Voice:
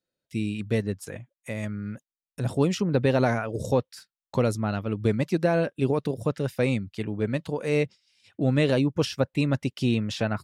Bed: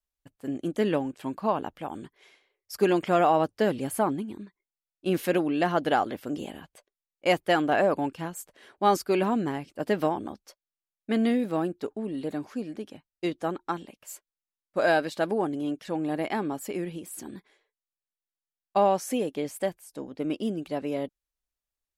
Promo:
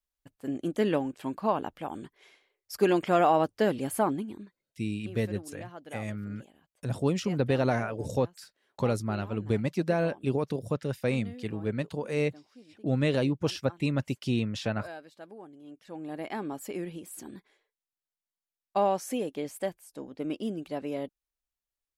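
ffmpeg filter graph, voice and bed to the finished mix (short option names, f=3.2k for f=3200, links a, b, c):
-filter_complex "[0:a]adelay=4450,volume=-4dB[a];[1:a]volume=15.5dB,afade=t=out:st=4.15:d=0.98:silence=0.112202,afade=t=in:st=15.63:d=1.03:silence=0.149624[b];[a][b]amix=inputs=2:normalize=0"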